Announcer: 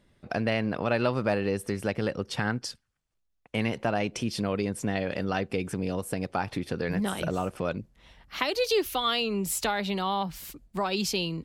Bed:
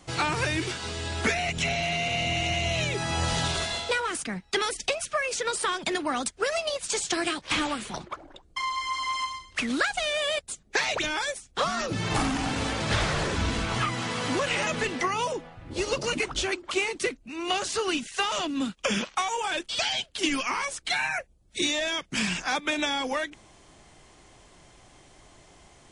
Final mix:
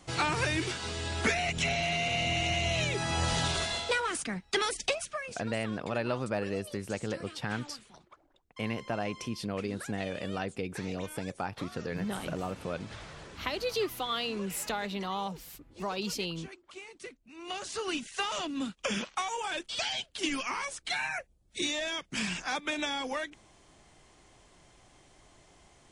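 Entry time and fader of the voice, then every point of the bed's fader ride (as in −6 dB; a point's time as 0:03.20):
5.05 s, −6.0 dB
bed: 0:04.93 −2.5 dB
0:05.54 −20 dB
0:16.81 −20 dB
0:17.95 −5.5 dB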